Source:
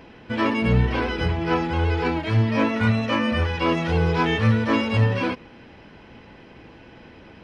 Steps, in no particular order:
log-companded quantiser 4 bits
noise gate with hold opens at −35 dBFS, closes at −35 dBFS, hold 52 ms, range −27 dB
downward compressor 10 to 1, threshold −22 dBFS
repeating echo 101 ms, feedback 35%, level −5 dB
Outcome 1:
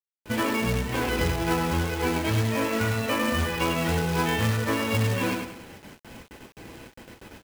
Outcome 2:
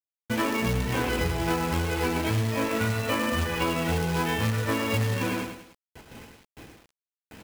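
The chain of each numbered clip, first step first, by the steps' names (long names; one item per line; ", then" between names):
downward compressor, then repeating echo, then noise gate with hold, then log-companded quantiser
noise gate with hold, then repeating echo, then log-companded quantiser, then downward compressor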